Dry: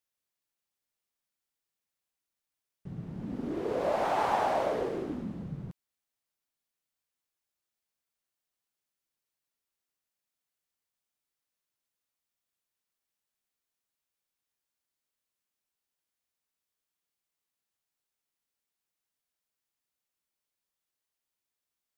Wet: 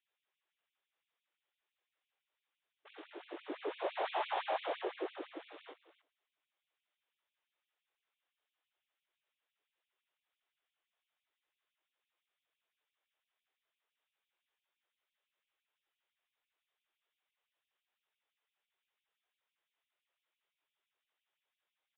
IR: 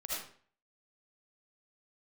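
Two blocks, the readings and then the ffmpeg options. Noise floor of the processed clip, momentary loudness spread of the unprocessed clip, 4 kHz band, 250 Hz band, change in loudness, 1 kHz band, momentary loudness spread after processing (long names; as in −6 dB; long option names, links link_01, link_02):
below −85 dBFS, 15 LU, −0.5 dB, −13.5 dB, −8.5 dB, −8.5 dB, 18 LU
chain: -filter_complex "[0:a]equalizer=frequency=97:width=3:gain=9,acrossover=split=130|3000[link_01][link_02][link_03];[link_02]acompressor=threshold=-36dB:ratio=6[link_04];[link_01][link_04][link_03]amix=inputs=3:normalize=0,alimiter=level_in=8dB:limit=-24dB:level=0:latency=1:release=22,volume=-8dB,acrusher=bits=5:mode=log:mix=0:aa=0.000001,flanger=delay=20:depth=5.3:speed=0.33,aecho=1:1:281:0.2,asplit=2[link_05][link_06];[1:a]atrim=start_sample=2205[link_07];[link_06][link_07]afir=irnorm=-1:irlink=0,volume=-20.5dB[link_08];[link_05][link_08]amix=inputs=2:normalize=0,aresample=8000,aresample=44100,afftfilt=real='re*gte(b*sr/1024,290*pow(2300/290,0.5+0.5*sin(2*PI*5.9*pts/sr)))':imag='im*gte(b*sr/1024,290*pow(2300/290,0.5+0.5*sin(2*PI*5.9*pts/sr)))':win_size=1024:overlap=0.75,volume=8.5dB"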